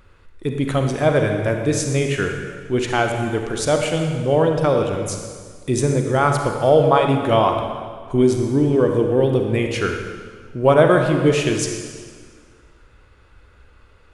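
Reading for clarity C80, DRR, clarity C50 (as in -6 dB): 5.5 dB, 3.0 dB, 4.0 dB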